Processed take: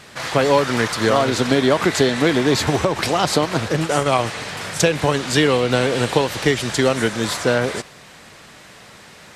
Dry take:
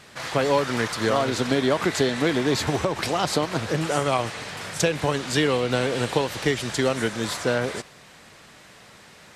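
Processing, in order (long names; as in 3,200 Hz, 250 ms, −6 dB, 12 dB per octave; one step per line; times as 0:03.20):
0:03.68–0:04.12: transient designer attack −2 dB, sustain −8 dB
level +5.5 dB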